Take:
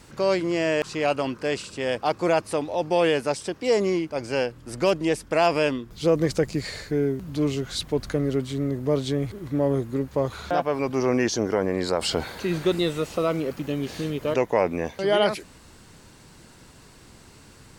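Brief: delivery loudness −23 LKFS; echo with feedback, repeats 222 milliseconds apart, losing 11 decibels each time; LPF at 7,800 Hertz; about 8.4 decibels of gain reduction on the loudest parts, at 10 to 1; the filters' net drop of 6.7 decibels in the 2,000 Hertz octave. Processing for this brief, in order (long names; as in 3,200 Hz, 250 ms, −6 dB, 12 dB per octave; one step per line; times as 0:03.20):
low-pass filter 7,800 Hz
parametric band 2,000 Hz −9 dB
downward compressor 10 to 1, threshold −25 dBFS
repeating echo 222 ms, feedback 28%, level −11 dB
level +8 dB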